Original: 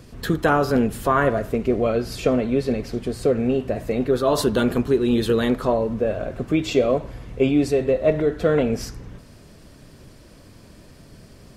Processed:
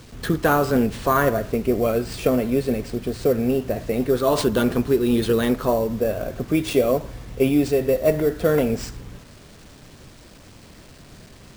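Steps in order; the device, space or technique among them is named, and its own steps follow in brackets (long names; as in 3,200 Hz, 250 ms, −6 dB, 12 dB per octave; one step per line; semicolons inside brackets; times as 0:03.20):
early 8-bit sampler (sample-rate reduction 13,000 Hz, jitter 0%; bit reduction 8 bits)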